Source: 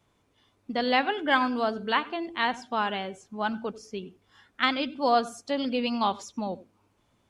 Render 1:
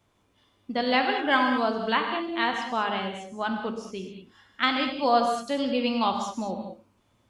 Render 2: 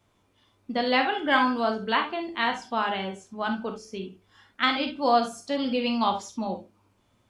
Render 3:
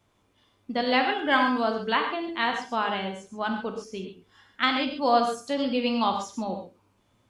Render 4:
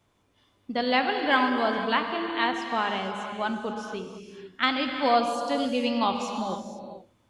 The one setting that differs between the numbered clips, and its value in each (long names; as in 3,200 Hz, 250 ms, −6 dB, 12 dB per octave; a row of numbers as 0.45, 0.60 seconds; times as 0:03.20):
reverb whose tail is shaped and stops, gate: 240, 90, 160, 520 milliseconds